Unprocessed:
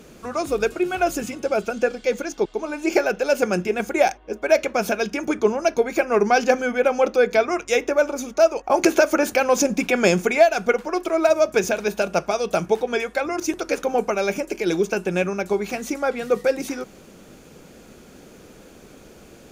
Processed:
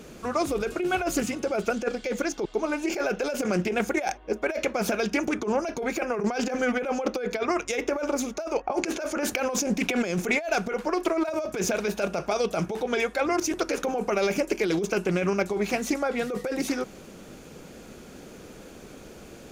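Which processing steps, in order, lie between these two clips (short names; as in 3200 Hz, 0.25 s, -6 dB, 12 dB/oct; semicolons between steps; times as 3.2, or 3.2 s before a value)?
8.57–9.21 low-pass opened by the level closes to 2900 Hz, open at -11 dBFS; negative-ratio compressor -23 dBFS, ratio -1; Doppler distortion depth 0.19 ms; gain -2.5 dB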